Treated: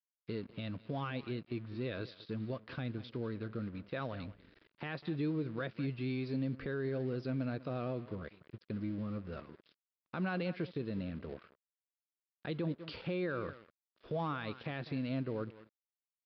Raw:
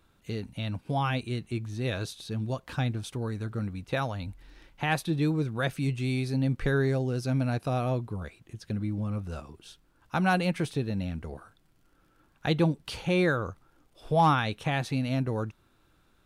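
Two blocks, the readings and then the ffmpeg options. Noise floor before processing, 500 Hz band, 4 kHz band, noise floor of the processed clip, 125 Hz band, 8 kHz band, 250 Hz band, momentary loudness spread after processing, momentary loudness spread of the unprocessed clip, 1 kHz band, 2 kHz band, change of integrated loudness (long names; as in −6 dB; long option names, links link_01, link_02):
−66 dBFS, −8.0 dB, −12.0 dB, below −85 dBFS, −11.5 dB, below −30 dB, −7.5 dB, 9 LU, 12 LU, −15.0 dB, −11.5 dB, −10.0 dB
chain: -filter_complex "[0:a]tiltshelf=frequency=1400:gain=6.5,asplit=2[link_01][link_02];[link_02]aecho=0:1:197:0.119[link_03];[link_01][link_03]amix=inputs=2:normalize=0,aeval=exprs='sgn(val(0))*max(abs(val(0))-0.00422,0)':channel_layout=same,aresample=11025,aresample=44100,asplit=2[link_04][link_05];[link_05]acompressor=threshold=-30dB:ratio=6,volume=0dB[link_06];[link_04][link_06]amix=inputs=2:normalize=0,highpass=frequency=450:poles=1,equalizer=frequency=810:width_type=o:width=0.57:gain=-11.5,alimiter=limit=-21dB:level=0:latency=1:release=56,volume=-7dB"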